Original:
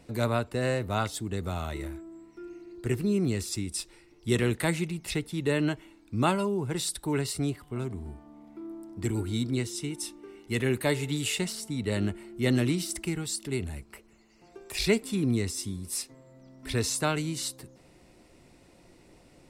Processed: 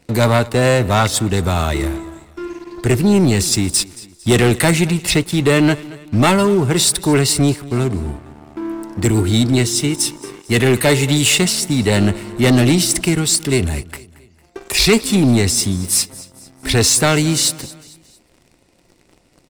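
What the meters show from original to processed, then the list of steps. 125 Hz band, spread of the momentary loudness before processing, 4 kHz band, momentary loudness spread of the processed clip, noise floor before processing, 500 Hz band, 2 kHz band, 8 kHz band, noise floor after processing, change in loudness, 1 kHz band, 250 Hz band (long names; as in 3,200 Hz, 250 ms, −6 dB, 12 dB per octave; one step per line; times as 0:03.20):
+14.5 dB, 16 LU, +17.0 dB, 14 LU, −58 dBFS, +13.5 dB, +14.5 dB, +18.0 dB, −55 dBFS, +15.0 dB, +14.0 dB, +14.0 dB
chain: parametric band 6,000 Hz +3 dB 2.1 octaves
leveller curve on the samples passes 3
repeating echo 226 ms, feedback 45%, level −20 dB
level +5 dB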